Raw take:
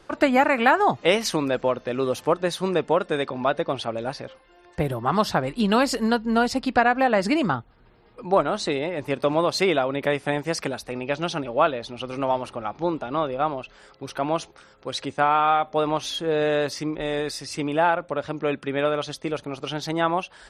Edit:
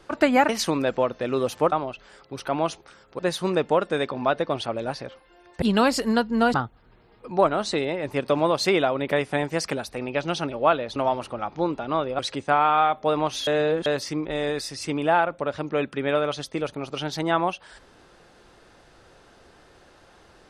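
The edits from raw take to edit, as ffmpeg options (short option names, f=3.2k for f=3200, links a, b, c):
-filter_complex "[0:a]asplit=10[a][b][c][d][e][f][g][h][i][j];[a]atrim=end=0.492[k];[b]atrim=start=1.148:end=2.382[l];[c]atrim=start=13.418:end=14.892[m];[d]atrim=start=2.378:end=4.812[n];[e]atrim=start=5.568:end=6.492[o];[f]atrim=start=7.478:end=11.902[p];[g]atrim=start=12.188:end=13.422[q];[h]atrim=start=14.888:end=16.172[r];[i]atrim=start=16.168:end=16.562,asetpts=PTS-STARTPTS,areverse[s];[j]atrim=start=16.558[t];[k][l]acrossfade=d=0.004:c1=hsin:c2=hsin[u];[u][m]acrossfade=d=0.004:c1=hsin:c2=hsin[v];[v][n]acrossfade=d=0.004:c1=hsin:c2=hsin[w];[w][o]acrossfade=d=0.004:c1=hsin:c2=hsin[x];[x][p]acrossfade=d=0.004:c1=hsin:c2=hsin[y];[y][q]acrossfade=d=0.004:c1=hsin:c2=hsin[z];[z][r]acrossfade=d=0.004:c1=hsin:c2=hsin[aa];[aa][s]acrossfade=d=0.004:c1=hsin:c2=hsin[ab];[ab][t]acrossfade=d=0.004:c1=hsin:c2=hsin"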